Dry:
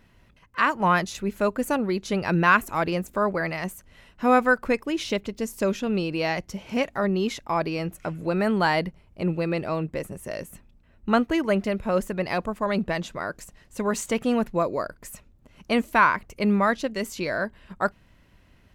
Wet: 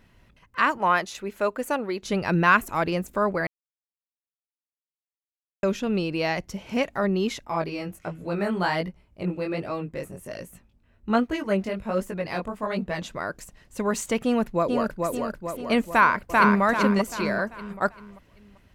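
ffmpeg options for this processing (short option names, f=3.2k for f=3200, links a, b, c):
-filter_complex "[0:a]asettb=1/sr,asplit=3[a][b][c];[a]atrim=end=0.784[d];[b]atrim=start=0.78:end=2.03,asetpts=PTS-STARTPTS,afade=t=in:d=0.004:c=qsin,afade=t=out:st=1.246:d=0.004:c=qsin,bass=f=250:g=-13,treble=f=4k:g=-3[e];[c]atrim=start=2.026[f];[d][e]acrossfade=d=0.004:c1=hsin:c2=qsin[g];[g][f]acrossfade=d=0.004:c1=qsin:c2=hsin,asettb=1/sr,asplit=3[h][i][j];[h]atrim=end=7.454[k];[i]atrim=start=7.45:end=13.02,asetpts=PTS-STARTPTS,afade=t=in:d=0.004:c=qsin,afade=t=out:st=5.566:d=0.004:c=qsin,flanger=delay=16:depth=6.1:speed=1.3[l];[j]atrim=start=13.016[m];[k][l]acrossfade=d=0.004:c1=hsin:c2=qsin[n];[n][m]acrossfade=d=0.004:c1=qsin:c2=hsin,asplit=2[o][p];[p]afade=t=in:st=14.24:d=0.01,afade=t=out:st=15.12:d=0.01,aecho=0:1:440|880|1320|1760|2200|2640|3080|3520:0.668344|0.367589|0.202174|0.111196|0.0611576|0.0336367|0.0185002|0.0101751[q];[o][q]amix=inputs=2:normalize=0,asplit=2[r][s];[s]afade=t=in:st=15.9:d=0.01,afade=t=out:st=16.62:d=0.01,aecho=0:1:390|780|1170|1560|1950:0.891251|0.3565|0.1426|0.0570401|0.022816[t];[r][t]amix=inputs=2:normalize=0,asplit=3[u][v][w];[u]atrim=end=3.47,asetpts=PTS-STARTPTS,afade=t=out:st=3.466:d=0.004:c=hsin[x];[v]atrim=start=3.47:end=5.63,asetpts=PTS-STARTPTS,volume=0[y];[w]atrim=start=5.63,asetpts=PTS-STARTPTS,afade=t=in:d=0.004:c=hsin[z];[x][y][z]concat=n=3:v=0:a=1"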